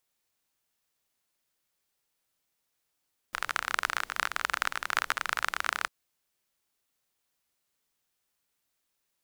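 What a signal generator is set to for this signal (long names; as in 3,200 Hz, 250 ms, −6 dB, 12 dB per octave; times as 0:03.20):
rain-like ticks over hiss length 2.55 s, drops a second 30, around 1,400 Hz, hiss −22 dB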